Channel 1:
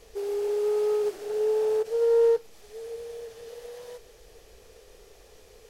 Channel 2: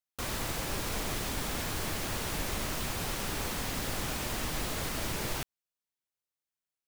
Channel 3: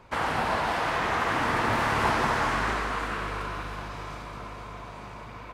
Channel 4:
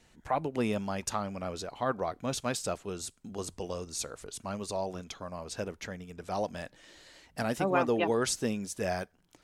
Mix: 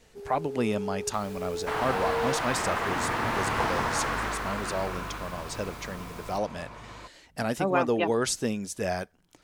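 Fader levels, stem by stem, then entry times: -11.0, -14.0, -3.0, +2.5 dB; 0.00, 0.95, 1.55, 0.00 s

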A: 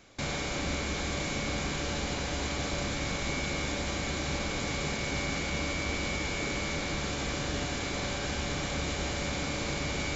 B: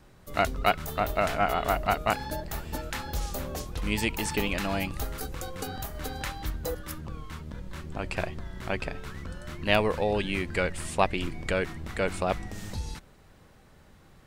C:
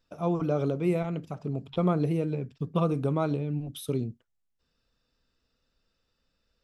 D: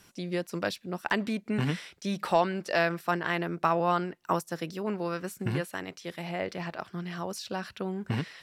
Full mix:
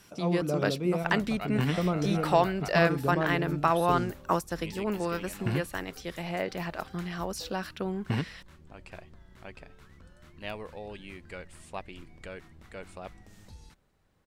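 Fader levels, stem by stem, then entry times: off, -15.0 dB, -3.0 dB, +1.0 dB; off, 0.75 s, 0.00 s, 0.00 s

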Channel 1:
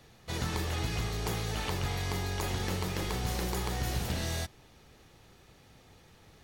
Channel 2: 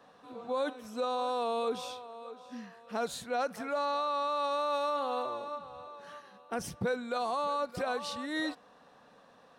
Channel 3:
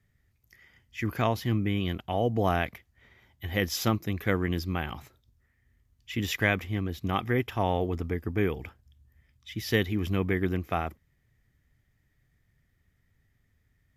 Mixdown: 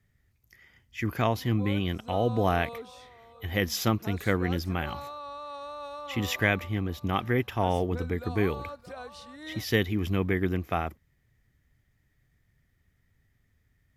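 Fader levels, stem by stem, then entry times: off, -8.5 dB, +0.5 dB; off, 1.10 s, 0.00 s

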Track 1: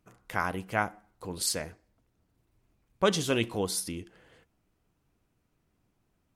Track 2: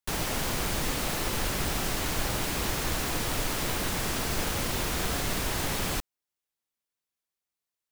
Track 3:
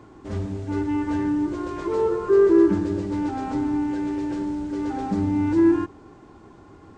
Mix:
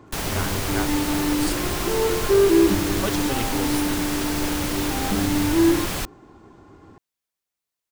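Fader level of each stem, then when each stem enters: -3.5, +3.0, -0.5 dB; 0.00, 0.05, 0.00 s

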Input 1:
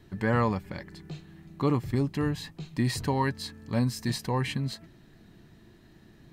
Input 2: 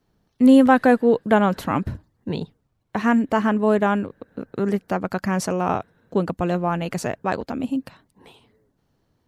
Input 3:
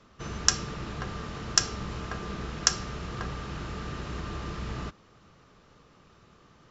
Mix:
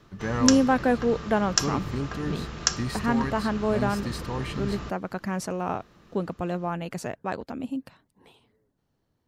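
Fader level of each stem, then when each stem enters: -4.0, -7.0, -0.5 dB; 0.00, 0.00, 0.00 s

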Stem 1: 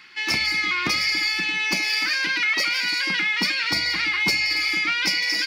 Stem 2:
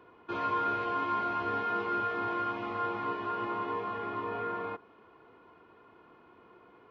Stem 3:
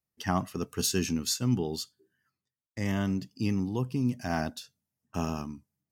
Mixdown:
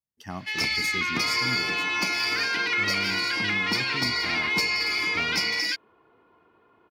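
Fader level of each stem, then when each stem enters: -3.5, -3.0, -8.0 dB; 0.30, 0.85, 0.00 s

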